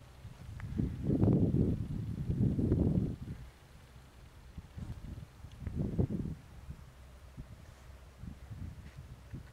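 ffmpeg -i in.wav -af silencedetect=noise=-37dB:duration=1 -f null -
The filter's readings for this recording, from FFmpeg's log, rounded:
silence_start: 3.33
silence_end: 4.58 | silence_duration: 1.26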